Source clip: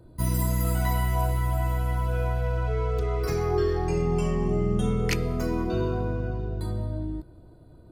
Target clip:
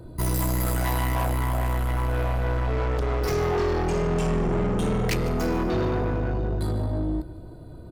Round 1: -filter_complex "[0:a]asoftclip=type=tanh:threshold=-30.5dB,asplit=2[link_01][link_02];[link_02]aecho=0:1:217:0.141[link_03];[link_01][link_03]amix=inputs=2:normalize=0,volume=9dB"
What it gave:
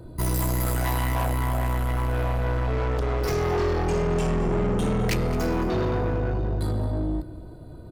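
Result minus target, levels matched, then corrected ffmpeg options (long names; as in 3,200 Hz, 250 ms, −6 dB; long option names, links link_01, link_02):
echo 66 ms late
-filter_complex "[0:a]asoftclip=type=tanh:threshold=-30.5dB,asplit=2[link_01][link_02];[link_02]aecho=0:1:151:0.141[link_03];[link_01][link_03]amix=inputs=2:normalize=0,volume=9dB"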